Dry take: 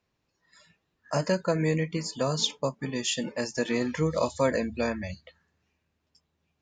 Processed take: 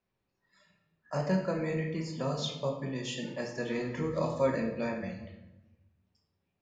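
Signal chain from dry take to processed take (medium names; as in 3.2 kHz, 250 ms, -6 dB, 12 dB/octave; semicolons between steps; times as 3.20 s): low-pass 2.9 kHz 6 dB/octave; simulated room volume 370 m³, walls mixed, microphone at 1.1 m; trim -7 dB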